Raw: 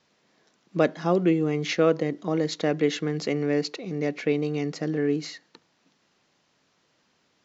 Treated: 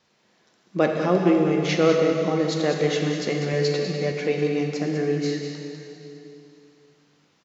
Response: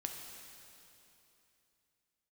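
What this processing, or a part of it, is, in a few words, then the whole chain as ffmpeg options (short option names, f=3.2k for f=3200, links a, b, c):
cave: -filter_complex "[0:a]aecho=1:1:198:0.376[a];[1:a]atrim=start_sample=2205[b];[a][b]afir=irnorm=-1:irlink=0,equalizer=f=290:w=6.4:g=-3,asettb=1/sr,asplit=3[c][d][e];[c]atrim=end=3.524[f];[d]atrim=start=3.52:end=4.12,asetpts=PTS-STARTPTS,afade=t=in:d=0.004:c=qsin,afade=t=out:st=0.596:d=0.004:c=qsin,asplit=2[g][h];[h]adelay=12,volume=-4dB[i];[g][i]amix=inputs=2:normalize=0,atrim=end_sample=26460[j];[e]atrim=start=4.116[k];[f][j]acrossfade=d=0.004:c1=hsin:c2=qsin[l];[l][k]acrossfade=d=0.004:c1=qsin:c2=hsin,volume=3.5dB"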